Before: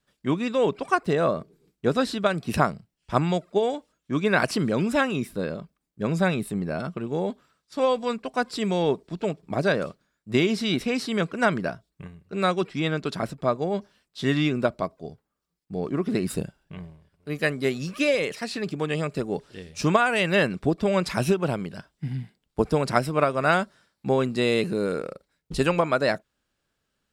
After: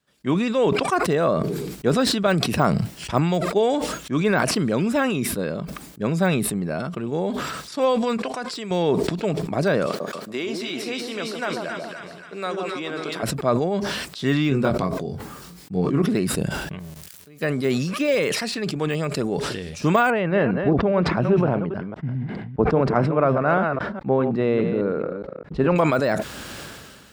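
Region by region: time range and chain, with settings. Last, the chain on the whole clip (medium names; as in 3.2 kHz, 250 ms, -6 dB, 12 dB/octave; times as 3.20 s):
8.17–8.71 s: low-pass 9.8 kHz + bass shelf 250 Hz -10 dB + compression 3:1, threshold -30 dBFS
9.86–13.23 s: high-pass 310 Hz + compression 1.5:1, threshold -37 dBFS + two-band feedback delay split 1.1 kHz, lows 141 ms, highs 269 ms, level -4 dB
14.49–16.02 s: peaking EQ 140 Hz +4 dB 1.6 oct + band-stop 620 Hz, Q 9.2 + doubling 22 ms -5 dB
16.79–17.41 s: zero-crossing glitches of -36.5 dBFS + level held to a coarse grid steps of 24 dB
20.10–25.76 s: chunks repeated in reverse 205 ms, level -8.5 dB + low-pass 1.4 kHz
whole clip: de-esser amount 90%; high-pass 69 Hz; decay stretcher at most 30 dB/s; trim +2 dB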